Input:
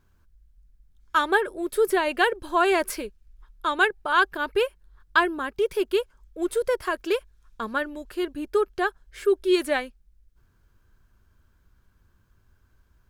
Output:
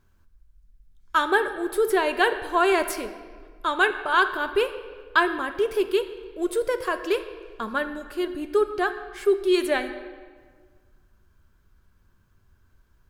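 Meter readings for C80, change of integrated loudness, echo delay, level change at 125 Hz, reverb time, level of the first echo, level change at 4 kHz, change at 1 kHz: 12.0 dB, +0.5 dB, no echo audible, can't be measured, 1.6 s, no echo audible, +0.5 dB, +0.5 dB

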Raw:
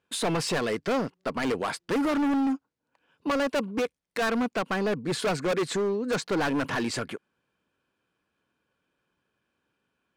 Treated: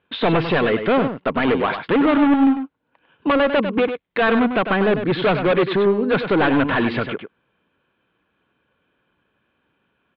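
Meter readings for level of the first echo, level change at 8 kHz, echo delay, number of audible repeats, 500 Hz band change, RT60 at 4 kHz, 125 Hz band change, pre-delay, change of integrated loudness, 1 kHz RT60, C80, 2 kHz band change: −8.5 dB, below −30 dB, 99 ms, 1, +9.5 dB, no reverb audible, +9.5 dB, no reverb audible, +9.5 dB, no reverb audible, no reverb audible, +9.5 dB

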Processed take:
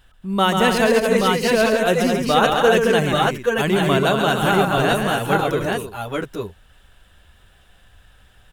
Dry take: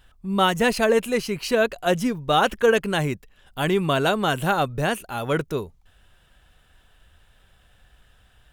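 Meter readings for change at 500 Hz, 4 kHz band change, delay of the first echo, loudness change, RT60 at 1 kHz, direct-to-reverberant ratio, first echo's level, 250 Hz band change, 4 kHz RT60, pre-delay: +5.0 dB, +5.0 dB, 137 ms, +4.5 dB, no reverb audible, no reverb audible, −5.5 dB, +5.0 dB, no reverb audible, no reverb audible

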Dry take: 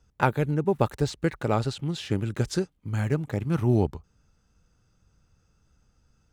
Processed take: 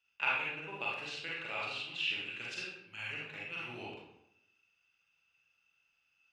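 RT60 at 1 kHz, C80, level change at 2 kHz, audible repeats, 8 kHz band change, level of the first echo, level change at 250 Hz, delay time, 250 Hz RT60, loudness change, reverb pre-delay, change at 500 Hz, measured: 0.80 s, 4.0 dB, +1.5 dB, no echo audible, −14.0 dB, no echo audible, −25.0 dB, no echo audible, 0.90 s, −10.5 dB, 35 ms, −20.0 dB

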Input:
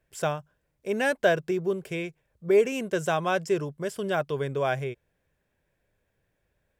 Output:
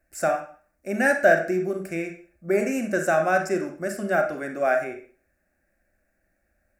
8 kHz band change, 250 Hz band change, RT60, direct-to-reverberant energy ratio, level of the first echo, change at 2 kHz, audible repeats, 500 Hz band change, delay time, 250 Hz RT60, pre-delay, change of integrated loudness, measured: +4.0 dB, +4.0 dB, 0.45 s, 4.0 dB, no echo audible, +6.5 dB, no echo audible, +2.5 dB, no echo audible, 0.40 s, 29 ms, +3.5 dB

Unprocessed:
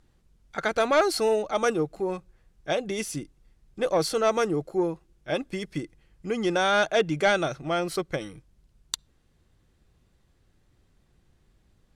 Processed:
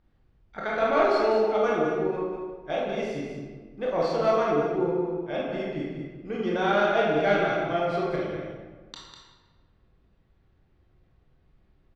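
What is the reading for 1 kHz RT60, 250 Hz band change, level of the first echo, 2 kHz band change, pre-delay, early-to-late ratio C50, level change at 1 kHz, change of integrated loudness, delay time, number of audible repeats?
1.4 s, +0.5 dB, −6.0 dB, −1.5 dB, 20 ms, −1.5 dB, +1.5 dB, +0.5 dB, 199 ms, 1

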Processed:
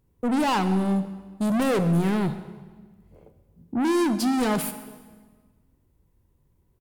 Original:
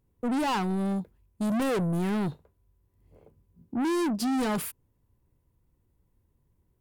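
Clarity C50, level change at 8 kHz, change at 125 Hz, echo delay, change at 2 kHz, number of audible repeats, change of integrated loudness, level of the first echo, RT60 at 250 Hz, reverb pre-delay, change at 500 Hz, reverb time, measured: 11.5 dB, +4.5 dB, +5.5 dB, 133 ms, +4.5 dB, 1, +4.5 dB, −20.5 dB, 1.8 s, 20 ms, +4.5 dB, 1.5 s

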